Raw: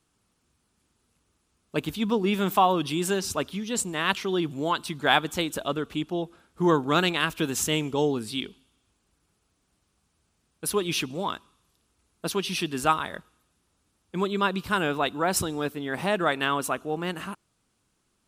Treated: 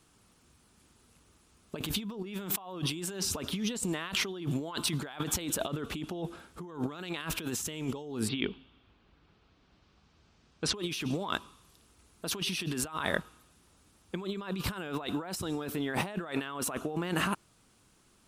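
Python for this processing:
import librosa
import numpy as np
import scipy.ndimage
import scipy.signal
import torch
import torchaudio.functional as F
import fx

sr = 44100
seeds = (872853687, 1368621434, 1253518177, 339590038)

y = fx.lowpass(x, sr, hz=fx.line((8.27, 3000.0), (10.74, 6300.0)), slope=24, at=(8.27, 10.74), fade=0.02)
y = fx.over_compress(y, sr, threshold_db=-36.0, ratio=-1.0)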